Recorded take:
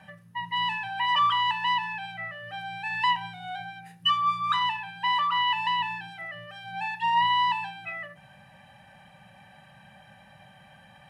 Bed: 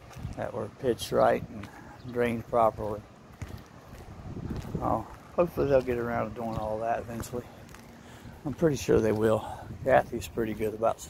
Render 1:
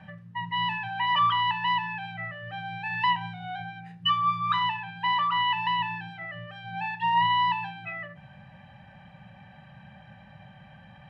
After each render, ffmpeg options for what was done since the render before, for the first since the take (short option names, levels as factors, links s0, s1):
-af "lowpass=5100,bass=f=250:g=8,treble=f=4000:g=-6"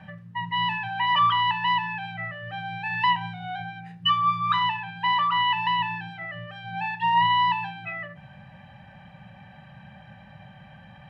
-af "volume=1.33"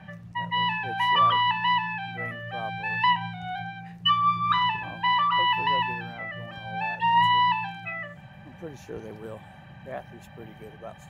-filter_complex "[1:a]volume=0.178[s0];[0:a][s0]amix=inputs=2:normalize=0"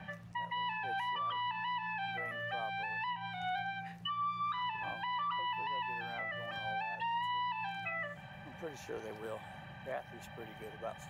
-filter_complex "[0:a]acrossover=split=470|1400|4200[s0][s1][s2][s3];[s0]acompressor=threshold=0.00282:ratio=4[s4];[s1]acompressor=threshold=0.0224:ratio=4[s5];[s2]acompressor=threshold=0.01:ratio=4[s6];[s3]acompressor=threshold=0.002:ratio=4[s7];[s4][s5][s6][s7]amix=inputs=4:normalize=0,alimiter=level_in=2:limit=0.0631:level=0:latency=1:release=209,volume=0.501"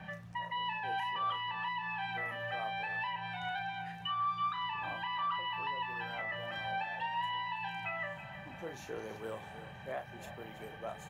-filter_complex "[0:a]asplit=2[s0][s1];[s1]adelay=36,volume=0.398[s2];[s0][s2]amix=inputs=2:normalize=0,aecho=1:1:327|654|981|1308|1635:0.224|0.112|0.056|0.028|0.014"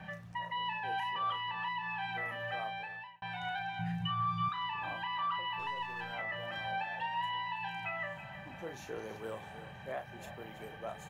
-filter_complex "[0:a]asettb=1/sr,asplit=3[s0][s1][s2];[s0]atrim=end=3.794[s3];[s1]atrim=start=3.79:end=4.49,asetpts=PTS-STARTPTS,afade=t=in:d=0.004:c=qsin,afade=t=out:st=0.696:d=0.004:c=qsin,lowshelf=f=210:t=q:w=3:g=10[s4];[s2]atrim=start=4.486[s5];[s3][s4]acrossfade=d=0.004:c1=hsin:c2=qsin[s6];[s6][s5]acrossfade=d=0.004:c1=qsin:c2=hsin,asettb=1/sr,asplit=3[s7][s8][s9];[s7]atrim=end=5.594[s10];[s8]atrim=start=5.59:end=6.12,asetpts=PTS-STARTPTS,afade=t=in:d=0.004:c=qsin,afade=t=out:st=0.526:d=0.004:c=qsin,aeval=exprs='if(lt(val(0),0),0.708*val(0),val(0))':c=same[s11];[s9]atrim=start=6.116[s12];[s10][s11]acrossfade=d=0.004:c1=hsin:c2=qsin[s13];[s13][s12]acrossfade=d=0.004:c1=qsin:c2=hsin,asplit=2[s14][s15];[s14]atrim=end=3.22,asetpts=PTS-STARTPTS,afade=t=out:st=2.58:d=0.64[s16];[s15]atrim=start=3.22,asetpts=PTS-STARTPTS,afade=t=in:d=0.004:c=hsin[s17];[s16][s17]concat=n=2:v=0:a=1"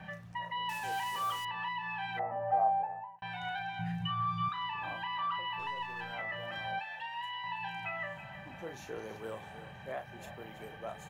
-filter_complex "[0:a]asettb=1/sr,asplit=3[s0][s1][s2];[s0]atrim=end=0.694[s3];[s1]atrim=start=0.69:end=1.45,asetpts=PTS-STARTPTS,afade=t=in:d=0.004:c=qsin,afade=t=out:st=0.756:d=0.004:c=qsin,acrusher=bits=6:mix=0:aa=0.5[s4];[s2]atrim=start=1.446[s5];[s3][s4]acrossfade=d=0.004:c1=hsin:c2=qsin[s6];[s6][s5]acrossfade=d=0.004:c1=qsin:c2=hsin,asettb=1/sr,asplit=3[s7][s8][s9];[s7]atrim=end=2.194[s10];[s8]atrim=start=2.19:end=3.19,asetpts=PTS-STARTPTS,afade=t=in:d=0.004:c=qsin,afade=t=out:st=0.996:d=0.004:c=qsin,lowpass=f=770:t=q:w=4.6[s11];[s9]atrim=start=3.186[s12];[s10][s11]acrossfade=d=0.004:c1=hsin:c2=qsin[s13];[s13][s12]acrossfade=d=0.004:c1=qsin:c2=hsin,asettb=1/sr,asplit=3[s14][s15][s16];[s14]atrim=end=6.794[s17];[s15]atrim=start=6.79:end=7.44,asetpts=PTS-STARTPTS,afade=t=in:d=0.004:c=qsin,afade=t=out:st=0.646:d=0.004:c=qsin,equalizer=f=210:w=0.32:g=-14[s18];[s16]atrim=start=7.436[s19];[s17][s18]acrossfade=d=0.004:c1=hsin:c2=qsin[s20];[s20][s19]acrossfade=d=0.004:c1=qsin:c2=hsin"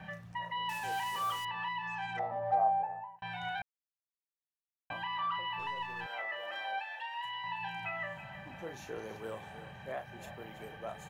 -filter_complex "[0:a]asettb=1/sr,asplit=3[s0][s1][s2];[s0]atrim=end=1.874[s3];[s1]atrim=start=1.87:end=2.55,asetpts=PTS-STARTPTS,afade=t=in:d=0.004:c=qsin,afade=t=out:st=0.676:d=0.004:c=qsin,adynamicsmooth=sensitivity=7.5:basefreq=3500[s4];[s2]atrim=start=2.546[s5];[s3][s4]acrossfade=d=0.004:c1=hsin:c2=qsin[s6];[s6][s5]acrossfade=d=0.004:c1=qsin:c2=hsin,asettb=1/sr,asplit=3[s7][s8][s9];[s7]atrim=end=6.064[s10];[s8]atrim=start=6.06:end=7.25,asetpts=PTS-STARTPTS,afade=t=in:d=0.004:c=qsin,afade=t=out:st=1.186:d=0.004:c=qsin,highpass=f=350:w=0.5412,highpass=f=350:w=1.3066[s11];[s9]atrim=start=7.246[s12];[s10][s11]acrossfade=d=0.004:c1=hsin:c2=qsin[s13];[s13][s12]acrossfade=d=0.004:c1=qsin:c2=hsin,asplit=3[s14][s15][s16];[s14]atrim=end=3.62,asetpts=PTS-STARTPTS,afade=t=out:st=3.616:d=0.004:c=hsin[s17];[s15]atrim=start=3.62:end=4.9,asetpts=PTS-STARTPTS,volume=0[s18];[s16]atrim=start=4.9,asetpts=PTS-STARTPTS,afade=t=in:d=0.004:c=hsin[s19];[s17][s18][s19]concat=n=3:v=0:a=1"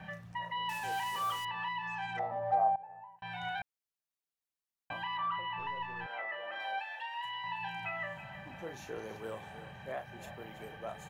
-filter_complex "[0:a]asettb=1/sr,asplit=3[s0][s1][s2];[s0]atrim=end=5.174[s3];[s1]atrim=start=5.17:end=6.6,asetpts=PTS-STARTPTS,afade=t=in:d=0.004:c=qsin,afade=t=out:st=1.426:d=0.004:c=qsin,bass=f=250:g=2,treble=f=4000:g=-14[s4];[s2]atrim=start=6.596[s5];[s3][s4]acrossfade=d=0.004:c1=hsin:c2=qsin[s6];[s6][s5]acrossfade=d=0.004:c1=qsin:c2=hsin,asplit=2[s7][s8];[s7]atrim=end=2.76,asetpts=PTS-STARTPTS,afade=t=out:st=2.756:d=0.004:c=hsin:silence=0.112202[s9];[s8]atrim=start=2.76,asetpts=PTS-STARTPTS,afade=t=in:d=0.64:silence=0.112202[s10];[s9][s10]concat=n=2:v=0:a=1"